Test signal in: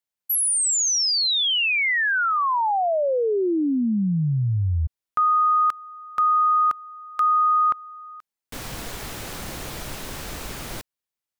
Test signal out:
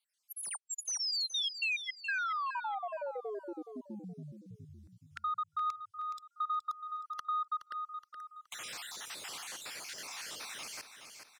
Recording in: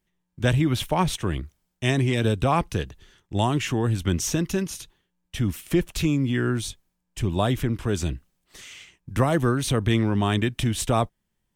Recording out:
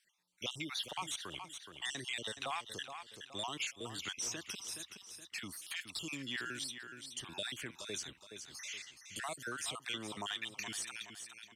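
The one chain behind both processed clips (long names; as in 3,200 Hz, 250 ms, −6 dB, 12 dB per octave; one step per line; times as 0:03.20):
time-frequency cells dropped at random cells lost 49%
first difference
in parallel at +2 dB: downward compressor 12 to 1, threshold −42 dBFS
on the sum: soft clipping −24.5 dBFS
high-frequency loss of the air 77 metres
repeating echo 421 ms, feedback 29%, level −11 dB
multiband upward and downward compressor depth 40%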